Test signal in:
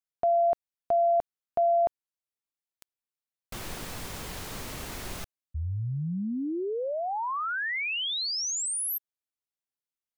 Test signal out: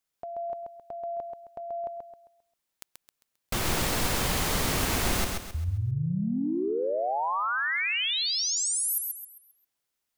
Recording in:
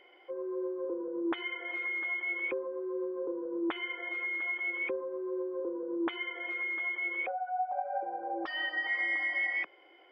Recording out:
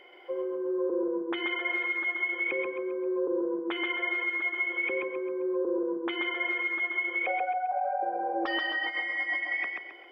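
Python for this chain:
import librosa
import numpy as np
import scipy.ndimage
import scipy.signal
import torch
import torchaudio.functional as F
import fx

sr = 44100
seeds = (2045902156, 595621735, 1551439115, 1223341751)

p1 = fx.over_compress(x, sr, threshold_db=-35.0, ratio=-1.0)
p2 = p1 + fx.echo_feedback(p1, sr, ms=133, feedback_pct=36, wet_db=-4.0, dry=0)
y = p2 * librosa.db_to_amplitude(4.5)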